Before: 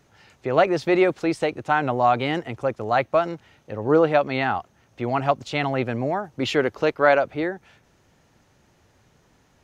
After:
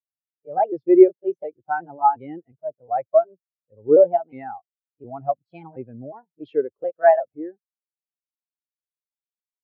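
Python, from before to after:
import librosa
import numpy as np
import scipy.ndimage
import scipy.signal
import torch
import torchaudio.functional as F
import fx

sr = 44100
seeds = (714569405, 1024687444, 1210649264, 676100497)

y = fx.pitch_trill(x, sr, semitones=2.5, every_ms=360)
y = fx.spectral_expand(y, sr, expansion=2.5)
y = y * librosa.db_to_amplitude(2.5)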